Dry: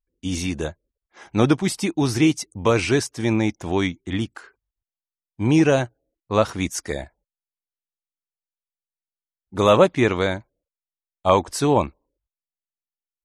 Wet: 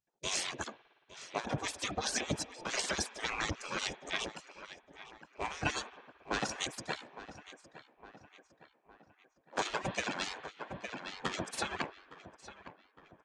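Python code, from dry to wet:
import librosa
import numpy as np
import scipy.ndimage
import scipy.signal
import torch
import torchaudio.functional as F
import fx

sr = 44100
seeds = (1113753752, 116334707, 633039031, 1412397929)

y = fx.lower_of_two(x, sr, delay_ms=1.2)
y = fx.peak_eq(y, sr, hz=6800.0, db=10.0, octaves=1.6)
y = fx.rev_spring(y, sr, rt60_s=1.6, pass_ms=(56,), chirp_ms=50, drr_db=13.0)
y = fx.dereverb_blind(y, sr, rt60_s=1.1)
y = fx.over_compress(y, sr, threshold_db=-24.0, ratio=-0.5)
y = scipy.signal.sosfilt(scipy.signal.butter(4, 8700.0, 'lowpass', fs=sr, output='sos'), y)
y = fx.tilt_eq(y, sr, slope=-3.0)
y = fx.hum_notches(y, sr, base_hz=60, count=6)
y = fx.echo_filtered(y, sr, ms=860, feedback_pct=51, hz=3200.0, wet_db=-15)
y = fx.spec_gate(y, sr, threshold_db=-25, keep='weak')
y = fx.band_squash(y, sr, depth_pct=70, at=(9.65, 11.84))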